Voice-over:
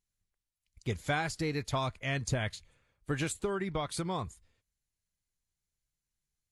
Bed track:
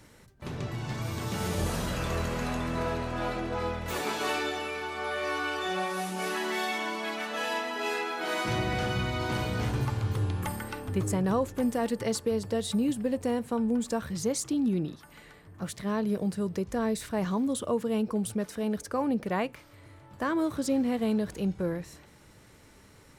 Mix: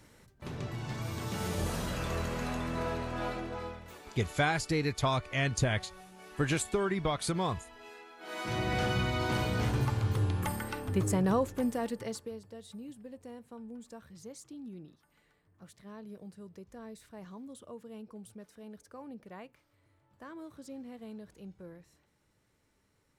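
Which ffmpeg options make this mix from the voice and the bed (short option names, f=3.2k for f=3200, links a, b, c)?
-filter_complex "[0:a]adelay=3300,volume=3dB[a];[1:a]volume=15.5dB,afade=t=out:st=3.26:d=0.72:silence=0.158489,afade=t=in:st=8.18:d=0.62:silence=0.112202,afade=t=out:st=11.27:d=1.16:silence=0.133352[b];[a][b]amix=inputs=2:normalize=0"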